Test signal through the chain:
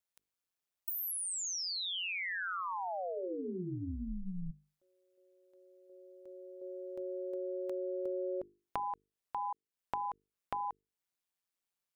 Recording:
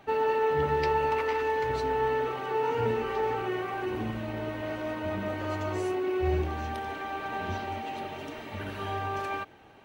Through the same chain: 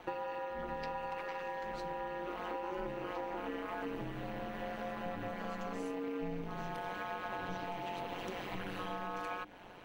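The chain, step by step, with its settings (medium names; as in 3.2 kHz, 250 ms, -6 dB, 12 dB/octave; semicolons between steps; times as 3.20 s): compression 6:1, threshold -39 dBFS; ring modulator 91 Hz; hum notches 50/100/150/200/250/300/350/400/450 Hz; trim +4.5 dB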